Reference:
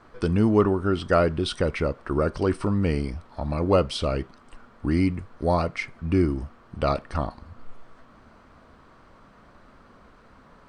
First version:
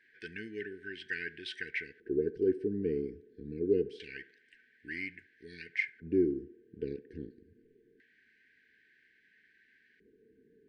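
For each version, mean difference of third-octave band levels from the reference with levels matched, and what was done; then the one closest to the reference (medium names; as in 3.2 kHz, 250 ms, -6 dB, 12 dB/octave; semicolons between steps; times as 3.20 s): 11.0 dB: LFO band-pass square 0.25 Hz 450–1900 Hz; brick-wall FIR band-stop 470–1500 Hz; on a send: band-passed feedback delay 70 ms, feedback 59%, band-pass 580 Hz, level -15 dB; on the sum: dynamic bell 1.5 kHz, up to +4 dB, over -59 dBFS, Q 4.1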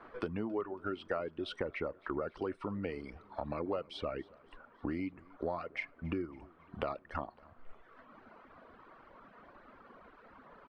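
5.5 dB: reverb removal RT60 1.4 s; three-band isolator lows -12 dB, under 240 Hz, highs -22 dB, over 3.3 kHz; compression 5:1, threshold -36 dBFS, peak gain reduction 18 dB; feedback delay 278 ms, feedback 59%, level -24 dB; trim +1 dB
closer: second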